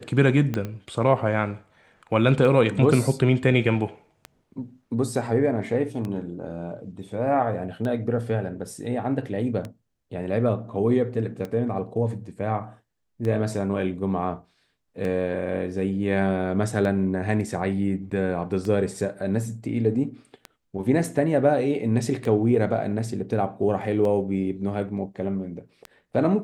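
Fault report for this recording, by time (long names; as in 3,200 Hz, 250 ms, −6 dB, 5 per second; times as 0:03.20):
scratch tick 33 1/3 rpm −19 dBFS
0:00.54: click −14 dBFS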